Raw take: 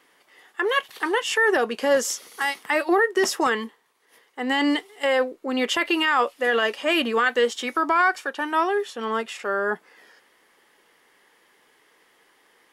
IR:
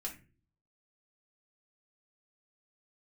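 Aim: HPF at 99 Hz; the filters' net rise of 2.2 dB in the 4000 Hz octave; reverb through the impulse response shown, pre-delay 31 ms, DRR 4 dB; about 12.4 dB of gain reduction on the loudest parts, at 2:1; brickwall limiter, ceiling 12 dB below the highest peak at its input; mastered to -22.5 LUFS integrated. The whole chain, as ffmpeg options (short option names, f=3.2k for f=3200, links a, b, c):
-filter_complex "[0:a]highpass=99,equalizer=f=4k:t=o:g=3.5,acompressor=threshold=-39dB:ratio=2,alimiter=level_in=5.5dB:limit=-24dB:level=0:latency=1,volume=-5.5dB,asplit=2[a][b];[1:a]atrim=start_sample=2205,adelay=31[c];[b][c]afir=irnorm=-1:irlink=0,volume=-3dB[d];[a][d]amix=inputs=2:normalize=0,volume=14dB"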